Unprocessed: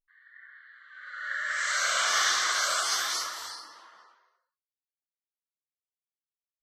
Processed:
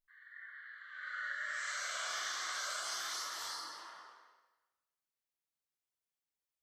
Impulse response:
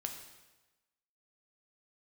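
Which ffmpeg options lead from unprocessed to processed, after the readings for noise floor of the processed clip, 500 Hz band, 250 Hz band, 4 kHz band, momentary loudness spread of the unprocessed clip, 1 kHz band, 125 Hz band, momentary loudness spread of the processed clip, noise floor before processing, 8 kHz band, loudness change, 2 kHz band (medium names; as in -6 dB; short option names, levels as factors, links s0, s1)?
under -85 dBFS, -11.5 dB, -9.5 dB, -12.0 dB, 17 LU, -11.5 dB, no reading, 15 LU, under -85 dBFS, -12.0 dB, -13.0 dB, -10.5 dB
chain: -filter_complex "[0:a]acompressor=threshold=0.0112:ratio=6[s0];[1:a]atrim=start_sample=2205[s1];[s0][s1]afir=irnorm=-1:irlink=0,volume=1.19"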